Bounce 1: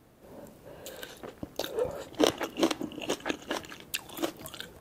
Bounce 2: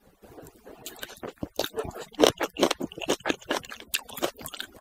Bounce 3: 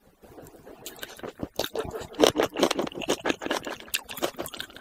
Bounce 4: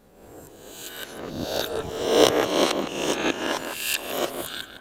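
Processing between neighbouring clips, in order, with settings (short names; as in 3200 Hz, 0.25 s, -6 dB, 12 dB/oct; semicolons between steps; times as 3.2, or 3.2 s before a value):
median-filter separation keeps percussive; gain +5.5 dB
darkening echo 0.161 s, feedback 17%, low-pass 1800 Hz, level -6 dB
spectral swells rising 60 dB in 0.87 s; gain -1.5 dB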